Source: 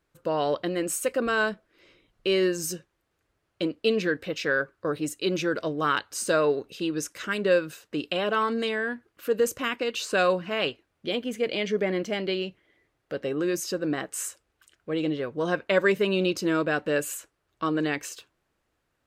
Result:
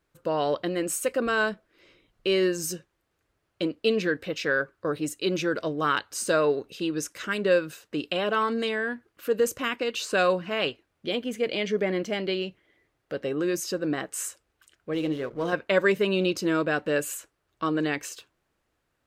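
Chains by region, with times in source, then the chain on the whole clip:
0:14.93–0:15.53: mains-hum notches 60/120/180/240/300/360/420/480/540/600 Hz + slack as between gear wheels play −41.5 dBFS
whole clip: no processing

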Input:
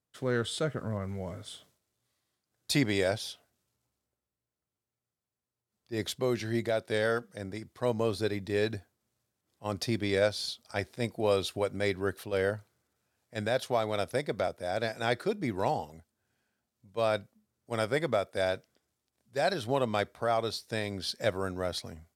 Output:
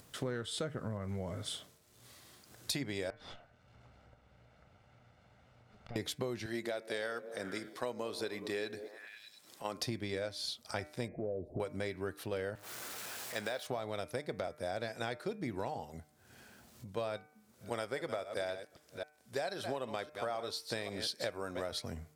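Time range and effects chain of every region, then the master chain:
0:03.10–0:05.96: lower of the sound and its delayed copy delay 1.4 ms + low-pass filter 2,300 Hz + downward compressor, threshold −47 dBFS
0:06.46–0:09.80: high-pass filter 180 Hz + low-shelf EQ 500 Hz −7 dB + echo through a band-pass that steps 101 ms, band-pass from 320 Hz, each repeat 0.7 octaves, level −12 dB
0:11.08–0:11.60: converter with a step at zero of −40.5 dBFS + elliptic low-pass filter 660 Hz, stop band 50 dB + downward compressor 1.5 to 1, threshold −39 dBFS
0:12.55–0:13.67: converter with a step at zero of −41.5 dBFS + high-pass filter 740 Hz 6 dB per octave + de-essing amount 90%
0:17.17–0:21.72: delay that plays each chunk backwards 266 ms, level −12.5 dB + bass and treble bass −7 dB, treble +1 dB
whole clip: downward compressor 12 to 1, threshold −39 dBFS; hum removal 150.9 Hz, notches 17; upward compression, threshold −47 dBFS; level +5 dB

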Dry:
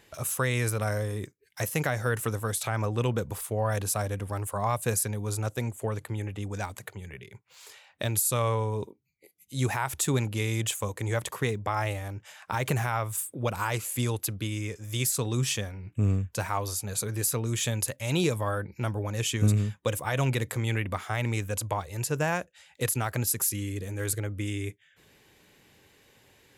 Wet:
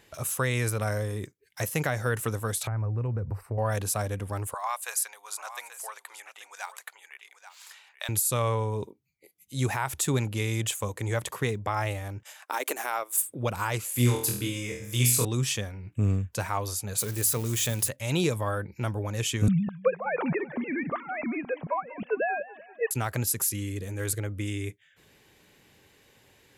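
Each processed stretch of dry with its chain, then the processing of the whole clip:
0:02.67–0:03.58: parametric band 99 Hz +12.5 dB 0.81 octaves + downward compressor 4 to 1, threshold −28 dBFS + moving average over 13 samples
0:04.54–0:08.09: high-pass filter 820 Hz 24 dB per octave + single-tap delay 834 ms −12.5 dB
0:12.23–0:13.22: elliptic high-pass filter 280 Hz, stop band 50 dB + high-shelf EQ 8,000 Hz +11.5 dB + transient designer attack 0 dB, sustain −10 dB
0:13.93–0:15.25: high-shelf EQ 9,500 Hz +3.5 dB + flutter between parallel walls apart 4.2 metres, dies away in 0.5 s
0:16.98–0:17.88: spike at every zero crossing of −27 dBFS + mains-hum notches 50/100/150/200/250/300 Hz
0:19.48–0:22.91: three sine waves on the formant tracks + high-frequency loss of the air 300 metres + feedback echo with a swinging delay time 193 ms, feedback 53%, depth 118 cents, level −18.5 dB
whole clip: no processing

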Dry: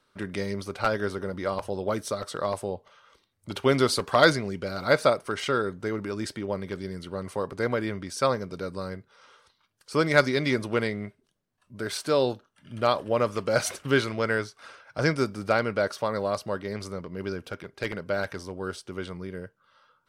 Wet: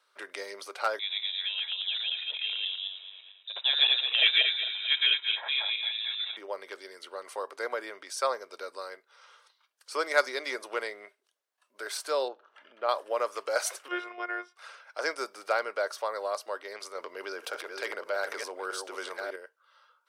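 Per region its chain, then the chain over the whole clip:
0:00.99–0:06.37: feedback delay that plays each chunk backwards 111 ms, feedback 52%, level 0 dB + high-frequency loss of the air 220 metres + voice inversion scrambler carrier 3,800 Hz
0:12.28–0:12.89: upward compression, threshold −30 dBFS + head-to-tape spacing loss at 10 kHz 34 dB
0:13.88–0:14.56: Savitzky-Golay smoothing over 25 samples + phases set to zero 355 Hz
0:16.95–0:19.36: delay that plays each chunk backwards 589 ms, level −8 dB + envelope flattener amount 50%
whole clip: dynamic equaliser 2,900 Hz, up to −6 dB, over −41 dBFS, Q 0.89; Bessel high-pass filter 690 Hz, order 6

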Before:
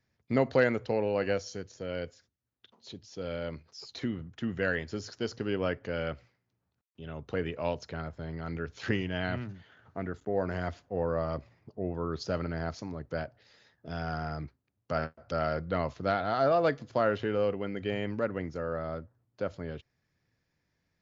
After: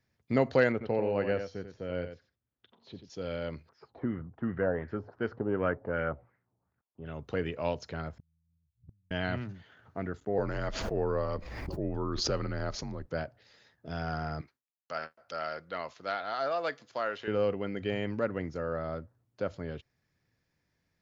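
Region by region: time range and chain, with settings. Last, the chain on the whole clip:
0:00.72–0:03.10: high-frequency loss of the air 260 metres + single-tap delay 89 ms −8.5 dB
0:03.69–0:07.06: high-shelf EQ 2,700 Hz −6 dB + auto-filter low-pass sine 2.7 Hz 770–1,800 Hz
0:08.18–0:09.11: inverse Chebyshev low-pass filter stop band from 800 Hz, stop band 80 dB + gate with flip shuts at −38 dBFS, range −32 dB
0:10.38–0:13.08: frequency shifter −57 Hz + background raised ahead of every attack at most 31 dB per second
0:14.41–0:17.28: high-pass filter 1,200 Hz 6 dB per octave + noise gate with hold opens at −56 dBFS, closes at −62 dBFS
whole clip: no processing

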